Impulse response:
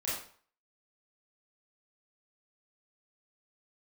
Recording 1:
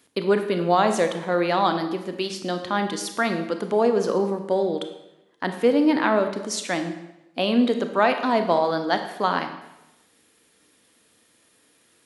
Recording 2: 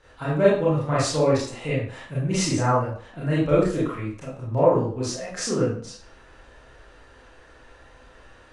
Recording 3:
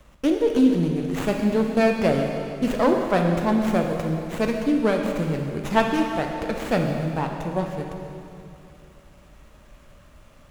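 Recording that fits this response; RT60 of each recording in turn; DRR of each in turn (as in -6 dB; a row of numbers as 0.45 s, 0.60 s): 2; 0.95 s, 0.50 s, 2.7 s; 7.0 dB, -9.0 dB, 1.5 dB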